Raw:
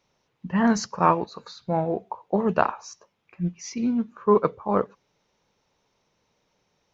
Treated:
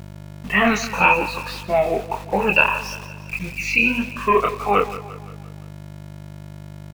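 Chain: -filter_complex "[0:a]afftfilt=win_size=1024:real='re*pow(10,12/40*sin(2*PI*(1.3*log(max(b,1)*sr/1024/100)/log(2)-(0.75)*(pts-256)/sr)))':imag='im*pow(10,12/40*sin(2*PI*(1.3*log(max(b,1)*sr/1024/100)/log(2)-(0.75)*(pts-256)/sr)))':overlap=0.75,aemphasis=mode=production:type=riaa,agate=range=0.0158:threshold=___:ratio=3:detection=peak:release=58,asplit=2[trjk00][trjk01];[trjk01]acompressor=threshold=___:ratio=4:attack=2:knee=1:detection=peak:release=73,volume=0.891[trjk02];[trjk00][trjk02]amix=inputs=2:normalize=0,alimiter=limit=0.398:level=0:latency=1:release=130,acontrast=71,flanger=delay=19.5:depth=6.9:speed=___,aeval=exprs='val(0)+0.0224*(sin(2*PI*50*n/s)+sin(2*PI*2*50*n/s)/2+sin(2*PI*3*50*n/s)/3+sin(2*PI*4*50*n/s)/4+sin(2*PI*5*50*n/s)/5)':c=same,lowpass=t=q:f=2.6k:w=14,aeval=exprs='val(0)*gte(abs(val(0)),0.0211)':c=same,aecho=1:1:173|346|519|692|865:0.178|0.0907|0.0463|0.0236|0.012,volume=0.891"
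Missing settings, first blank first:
0.00316, 0.0355, 1.7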